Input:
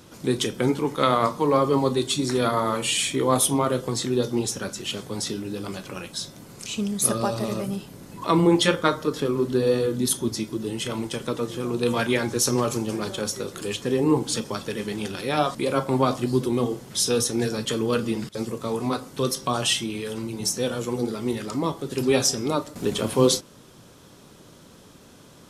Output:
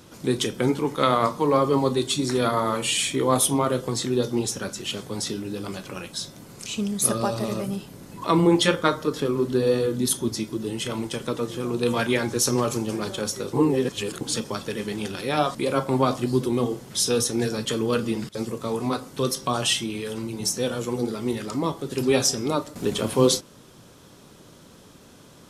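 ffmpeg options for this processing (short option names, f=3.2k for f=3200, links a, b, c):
-filter_complex "[0:a]asplit=3[a][b][c];[a]atrim=end=13.532[d];[b]atrim=start=13.528:end=14.212,asetpts=PTS-STARTPTS,areverse[e];[c]atrim=start=14.208[f];[d][e]acrossfade=d=0.004:c1=hsin:c2=hsin[g];[g][f]acrossfade=d=0.004:c1=hsin:c2=hsin"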